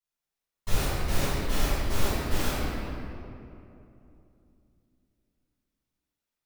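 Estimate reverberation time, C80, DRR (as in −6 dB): 2.8 s, −2.5 dB, −15.5 dB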